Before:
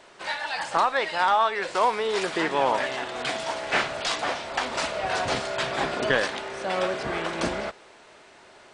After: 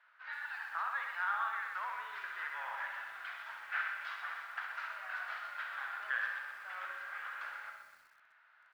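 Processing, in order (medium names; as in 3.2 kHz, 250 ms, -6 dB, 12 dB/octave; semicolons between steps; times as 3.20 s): ladder high-pass 1.3 kHz, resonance 60%; tape spacing loss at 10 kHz 42 dB; feedback delay 65 ms, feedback 41%, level -6.5 dB; algorithmic reverb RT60 0.6 s, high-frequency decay 0.5×, pre-delay 30 ms, DRR 12.5 dB; bit-crushed delay 125 ms, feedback 55%, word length 10-bit, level -8 dB; trim -1 dB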